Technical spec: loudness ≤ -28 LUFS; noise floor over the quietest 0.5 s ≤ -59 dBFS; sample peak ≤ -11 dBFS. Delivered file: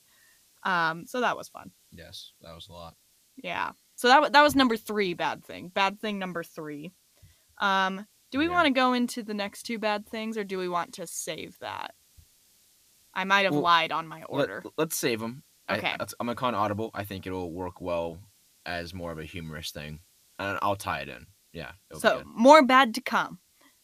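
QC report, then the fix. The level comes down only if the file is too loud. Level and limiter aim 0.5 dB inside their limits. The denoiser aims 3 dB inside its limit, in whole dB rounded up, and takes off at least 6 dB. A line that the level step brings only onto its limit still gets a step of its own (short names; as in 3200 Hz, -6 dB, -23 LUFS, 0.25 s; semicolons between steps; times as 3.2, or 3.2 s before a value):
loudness -26.5 LUFS: fail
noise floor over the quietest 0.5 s -63 dBFS: OK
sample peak -4.0 dBFS: fail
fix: gain -2 dB; limiter -11.5 dBFS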